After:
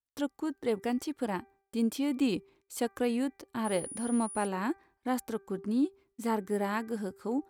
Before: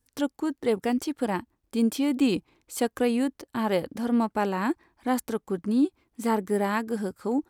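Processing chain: 3.64–4.46 s: whistle 9.7 kHz -35 dBFS; gate -55 dBFS, range -25 dB; de-hum 392.7 Hz, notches 6; trim -5.5 dB

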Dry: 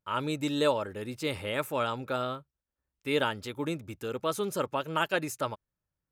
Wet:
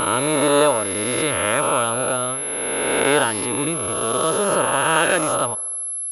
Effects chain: reverse spectral sustain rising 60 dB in 2.44 s; feedback echo behind a band-pass 75 ms, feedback 71%, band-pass 680 Hz, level -22 dB; class-D stage that switches slowly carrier 11 kHz; trim +6 dB

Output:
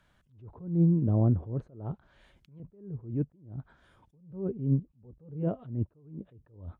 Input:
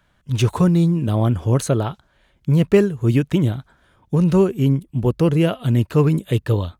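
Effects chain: 1.67–2.60 s: compressor with a negative ratio -20 dBFS, ratio -1; 4.17–5.43 s: comb of notches 340 Hz; low-pass that closes with the level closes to 540 Hz, closed at -17 dBFS; attacks held to a fixed rise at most 120 dB/s; trim -5.5 dB

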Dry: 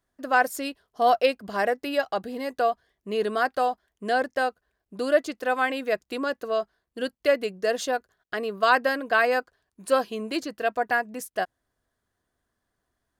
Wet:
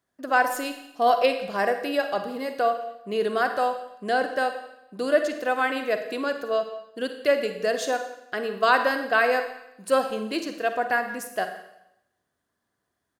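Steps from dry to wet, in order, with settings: high-pass 100 Hz; speakerphone echo 170 ms, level -20 dB; Schroeder reverb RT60 0.83 s, DRR 7 dB

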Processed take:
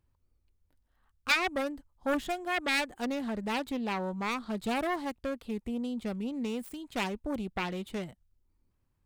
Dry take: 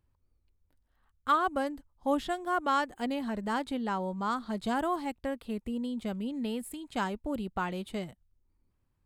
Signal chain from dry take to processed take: self-modulated delay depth 0.37 ms

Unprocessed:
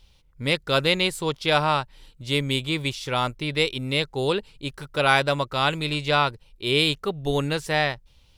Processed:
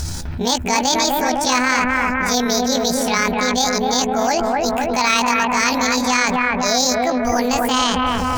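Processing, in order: rotating-head pitch shifter +9 st; reverse; upward compressor, threshold -27 dBFS; reverse; bucket-brigade echo 254 ms, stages 4096, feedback 56%, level -4 dB; level flattener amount 70%; trim +2 dB

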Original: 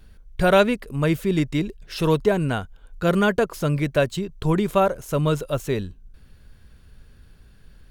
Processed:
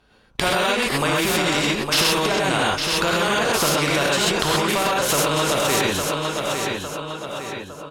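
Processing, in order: gate -38 dBFS, range -31 dB; peaking EQ 1.8 kHz -8.5 dB 0.77 oct; compression 10:1, threshold -29 dBFS, peak gain reduction 17.5 dB; band-pass filter 1.3 kHz, Q 0.67; hard clipper -26 dBFS, distortion -34 dB; feedback delay 857 ms, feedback 28%, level -13 dB; gated-style reverb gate 150 ms rising, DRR -6.5 dB; loudness maximiser +30 dB; spectrum-flattening compressor 2:1; trim -1 dB

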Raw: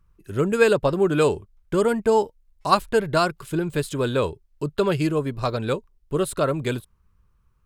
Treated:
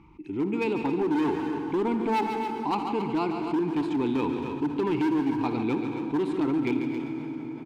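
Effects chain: low-pass 6.6 kHz; band-stop 1.1 kHz, Q 14; level rider gain up to 7 dB; vowel filter u; hard clipper -26 dBFS, distortion -8 dB; multi-tap echo 59/80/141/272 ms -18/-20/-12.5/-14 dB; reverberation RT60 3.2 s, pre-delay 139 ms, DRR 11 dB; level flattener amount 50%; trim +2.5 dB

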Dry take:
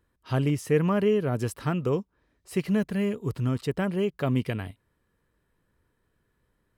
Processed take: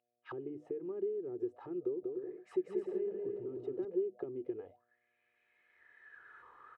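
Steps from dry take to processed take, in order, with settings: recorder AGC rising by 16 dB/s; gate with hold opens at -57 dBFS; low-pass 7.9 kHz; peaking EQ 4.8 kHz -7 dB 0.29 oct; hum notches 50/100/150/200/250/300 Hz; comb 2.4 ms, depth 53%; compression 4:1, threshold -29 dBFS, peak gain reduction 11.5 dB; mains buzz 120 Hz, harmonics 6, -56 dBFS -1 dB/octave; auto-wah 360–2800 Hz, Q 9, down, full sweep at -29 dBFS; 1.84–3.85 s: bouncing-ball echo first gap 190 ms, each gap 0.6×, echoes 5; trim +2 dB

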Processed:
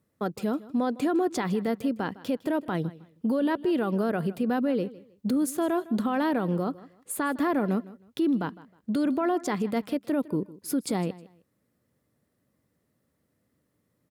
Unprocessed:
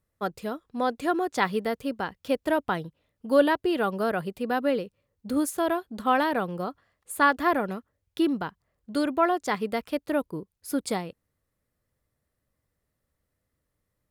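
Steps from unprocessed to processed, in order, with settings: high-pass 100 Hz; peaking EQ 240 Hz +9.5 dB 1.8 oct; compression 2.5:1, threshold -22 dBFS, peak gain reduction 9 dB; peak limiter -22 dBFS, peak gain reduction 10 dB; feedback delay 157 ms, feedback 25%, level -19 dB; trim +3 dB

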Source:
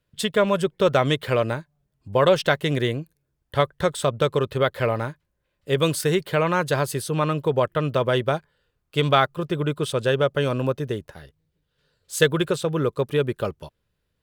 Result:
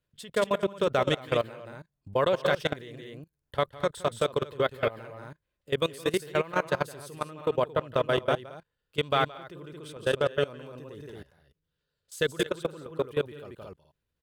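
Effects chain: loudspeakers at several distances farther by 58 m -8 dB, 77 m -7 dB; dynamic bell 140 Hz, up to -4 dB, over -34 dBFS, Q 1.1; level held to a coarse grid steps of 20 dB; trim -3 dB

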